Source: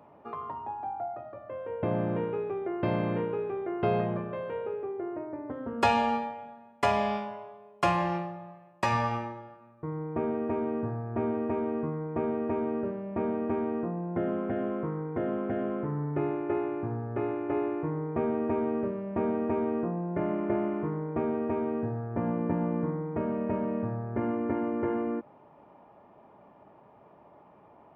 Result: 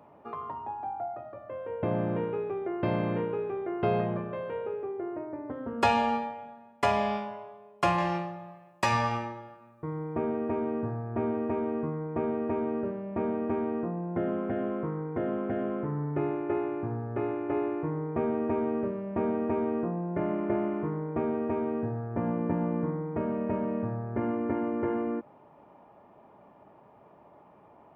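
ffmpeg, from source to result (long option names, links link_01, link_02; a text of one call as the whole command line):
ffmpeg -i in.wav -filter_complex "[0:a]asettb=1/sr,asplit=3[link_01][link_02][link_03];[link_01]atrim=end=7.984[link_04];[link_02]atrim=start=7.98:end=10.16,asetpts=PTS-STARTPTS,afade=type=in:duration=0.004:curve=qsin,afade=type=out:start_time=2.176:duration=0.004:curve=qsin,highshelf=frequency=2700:gain=7[link_05];[link_03]atrim=start=10.156[link_06];[link_04][link_05]acrossfade=duration=0.004:curve1=hsin:curve2=qsin[link_07];[link_07][link_06]acrossfade=duration=0.004:curve1=qsin:curve2=hsin" out.wav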